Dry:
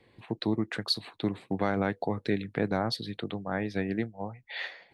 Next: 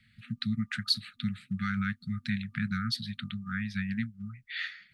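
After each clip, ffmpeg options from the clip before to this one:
ffmpeg -i in.wav -af "afftfilt=real='re*(1-between(b*sr/4096,240,1200))':imag='im*(1-between(b*sr/4096,240,1200))':win_size=4096:overlap=0.75,volume=1dB" out.wav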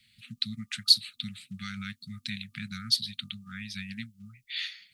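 ffmpeg -i in.wav -af "aexciter=amount=7.9:drive=1.3:freq=2400,volume=-8dB" out.wav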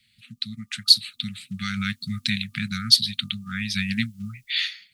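ffmpeg -i in.wav -af "dynaudnorm=framelen=210:gausssize=7:maxgain=16dB" out.wav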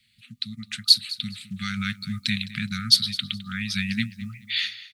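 ffmpeg -i in.wav -af "aecho=1:1:210|420:0.133|0.0333,volume=-1dB" out.wav

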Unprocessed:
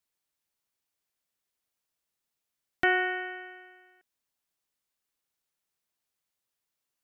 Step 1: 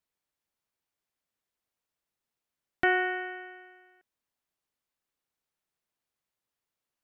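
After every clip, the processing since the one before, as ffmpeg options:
ffmpeg -i in.wav -af "highshelf=frequency=3000:gain=-7.5,volume=1dB" out.wav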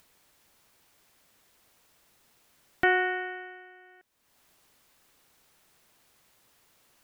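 ffmpeg -i in.wav -af "acompressor=mode=upward:threshold=-48dB:ratio=2.5,volume=1.5dB" out.wav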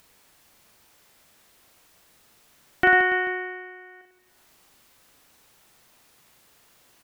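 ffmpeg -i in.wav -af "aecho=1:1:40|96|174.4|284.2|437.8:0.631|0.398|0.251|0.158|0.1,volume=4dB" out.wav

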